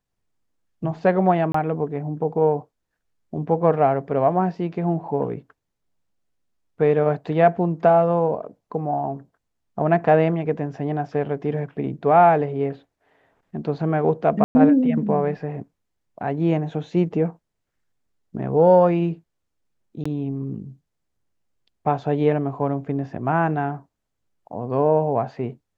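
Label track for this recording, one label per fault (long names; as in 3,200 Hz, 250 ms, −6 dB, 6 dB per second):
1.520000	1.540000	drop-out 24 ms
14.440000	14.550000	drop-out 110 ms
20.040000	20.050000	drop-out 15 ms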